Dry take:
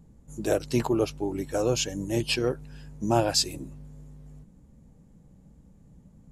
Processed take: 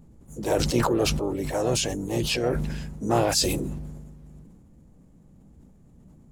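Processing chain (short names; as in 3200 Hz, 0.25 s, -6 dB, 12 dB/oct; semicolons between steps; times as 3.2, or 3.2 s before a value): harmoniser +3 st -11 dB, +5 st -10 dB, +7 st -11 dB; sustainer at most 32 dB/s; gain -1 dB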